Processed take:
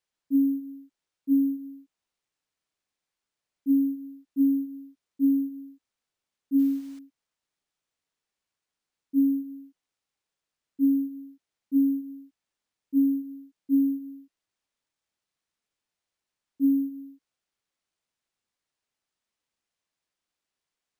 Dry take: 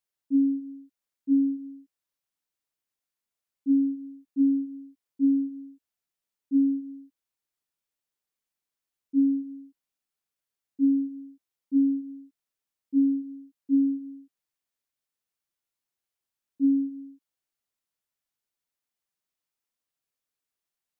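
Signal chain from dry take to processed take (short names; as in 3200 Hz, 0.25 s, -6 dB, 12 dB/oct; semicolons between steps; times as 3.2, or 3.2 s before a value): 6.59–6.99 requantised 10-bit, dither triangular; careless resampling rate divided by 3×, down none, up hold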